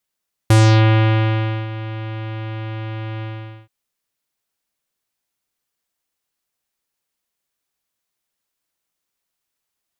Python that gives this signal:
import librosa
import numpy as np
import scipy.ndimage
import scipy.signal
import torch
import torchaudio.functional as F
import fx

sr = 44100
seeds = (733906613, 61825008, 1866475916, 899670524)

y = fx.sub_voice(sr, note=45, wave='square', cutoff_hz=3100.0, q=1.4, env_oct=2.0, env_s=0.33, attack_ms=4.3, decay_s=1.17, sustain_db=-17.5, release_s=0.46, note_s=2.72, slope=24)